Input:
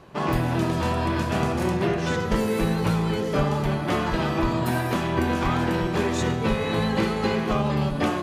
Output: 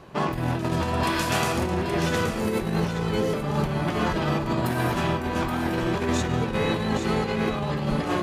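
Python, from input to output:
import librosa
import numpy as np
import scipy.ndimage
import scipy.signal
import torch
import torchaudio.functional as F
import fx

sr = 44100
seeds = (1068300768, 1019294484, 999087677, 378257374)

y = fx.tilt_eq(x, sr, slope=3.0, at=(1.03, 1.58))
y = fx.over_compress(y, sr, threshold_db=-25.0, ratio=-0.5)
y = y + 10.0 ** (-7.5 / 20.0) * np.pad(y, (int(824 * sr / 1000.0), 0))[:len(y)]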